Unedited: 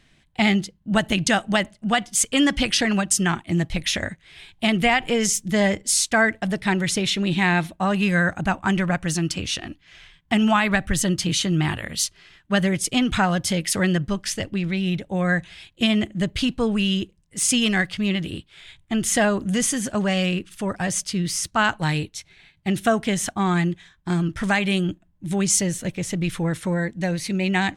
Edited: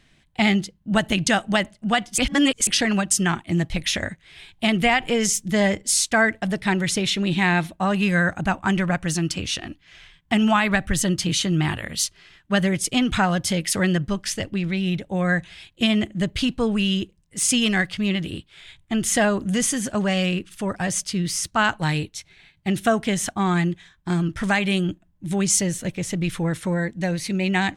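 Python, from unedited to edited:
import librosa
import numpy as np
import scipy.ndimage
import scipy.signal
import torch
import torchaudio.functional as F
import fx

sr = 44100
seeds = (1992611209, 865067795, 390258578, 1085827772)

y = fx.edit(x, sr, fx.reverse_span(start_s=2.18, length_s=0.49), tone=tone)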